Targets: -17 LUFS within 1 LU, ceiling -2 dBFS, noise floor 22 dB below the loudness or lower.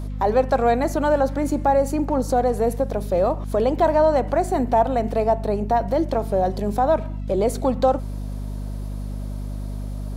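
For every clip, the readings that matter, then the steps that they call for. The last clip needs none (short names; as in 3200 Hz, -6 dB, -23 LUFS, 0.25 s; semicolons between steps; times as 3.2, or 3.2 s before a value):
hum 50 Hz; harmonics up to 250 Hz; hum level -26 dBFS; loudness -21.0 LUFS; peak -7.5 dBFS; loudness target -17.0 LUFS
-> notches 50/100/150/200/250 Hz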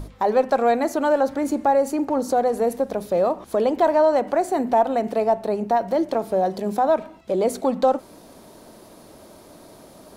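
hum none; loudness -21.5 LUFS; peak -8.5 dBFS; loudness target -17.0 LUFS
-> gain +4.5 dB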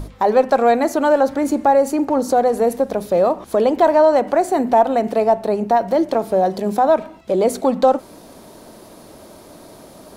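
loudness -17.0 LUFS; peak -4.0 dBFS; noise floor -43 dBFS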